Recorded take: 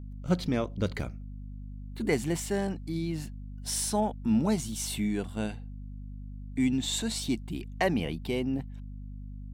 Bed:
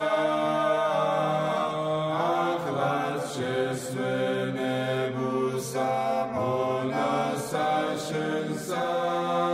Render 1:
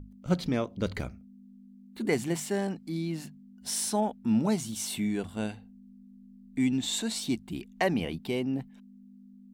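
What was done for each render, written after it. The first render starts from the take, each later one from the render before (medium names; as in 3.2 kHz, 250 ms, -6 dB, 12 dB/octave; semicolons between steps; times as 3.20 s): hum notches 50/100/150 Hz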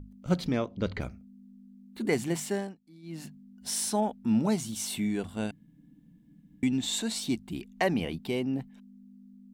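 0.52–1.00 s: low-pass 7.4 kHz -> 3.8 kHz; 2.52–3.26 s: dip -20 dB, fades 0.24 s; 5.51–6.63 s: room tone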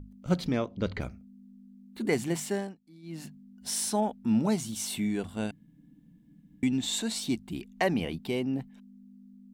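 no audible change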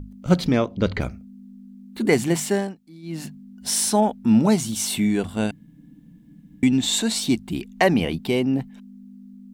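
trim +9 dB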